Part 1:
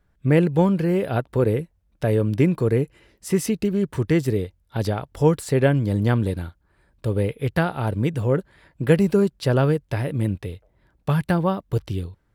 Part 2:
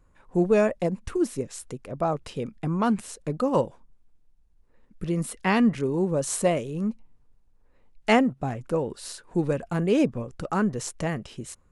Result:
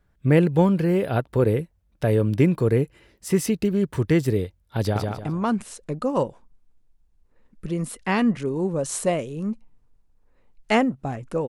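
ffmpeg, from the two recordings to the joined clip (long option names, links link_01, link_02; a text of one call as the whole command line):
ffmpeg -i cue0.wav -i cue1.wav -filter_complex "[0:a]apad=whole_dur=11.48,atrim=end=11.48,atrim=end=5.082[link_01];[1:a]atrim=start=2.458:end=8.86[link_02];[link_01][link_02]acrossfade=duration=0.004:curve1=hsin:curve2=hsin,asplit=2[link_03][link_04];[link_04]afade=type=in:start_time=4.8:duration=0.01,afade=type=out:start_time=5.08:duration=0.01,aecho=0:1:150|300|450|600:0.630957|0.189287|0.0567862|0.0170358[link_05];[link_03][link_05]amix=inputs=2:normalize=0" out.wav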